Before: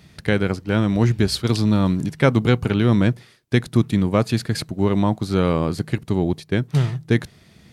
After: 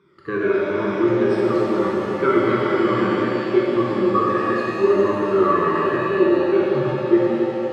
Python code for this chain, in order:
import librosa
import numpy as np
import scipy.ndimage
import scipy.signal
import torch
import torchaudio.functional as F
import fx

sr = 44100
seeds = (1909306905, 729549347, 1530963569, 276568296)

y = fx.spec_ripple(x, sr, per_octave=1.6, drift_hz=-2.3, depth_db=15)
y = fx.double_bandpass(y, sr, hz=660.0, octaves=1.6)
y = fx.rev_shimmer(y, sr, seeds[0], rt60_s=3.4, semitones=7, shimmer_db=-8, drr_db=-6.0)
y = y * librosa.db_to_amplitude(2.0)